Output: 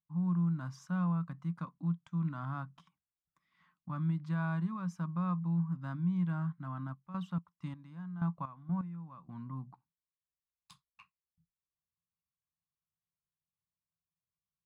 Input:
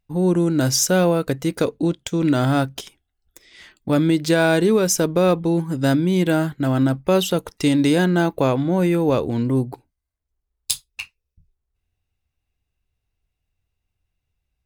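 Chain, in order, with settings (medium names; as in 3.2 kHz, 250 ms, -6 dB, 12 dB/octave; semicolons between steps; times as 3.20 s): two resonant band-passes 430 Hz, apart 2.7 oct; 6.93–9.38 s: trance gate ".x....xx." 126 bpm -12 dB; trim -7 dB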